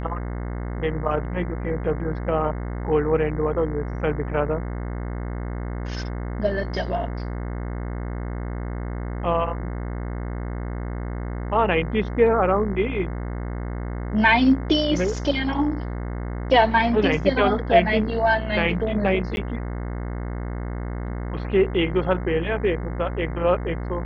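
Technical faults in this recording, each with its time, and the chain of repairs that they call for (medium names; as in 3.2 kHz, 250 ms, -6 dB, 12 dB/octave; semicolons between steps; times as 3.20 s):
buzz 60 Hz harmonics 36 -29 dBFS
19.36–19.37 s: dropout 11 ms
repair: de-hum 60 Hz, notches 36; interpolate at 19.36 s, 11 ms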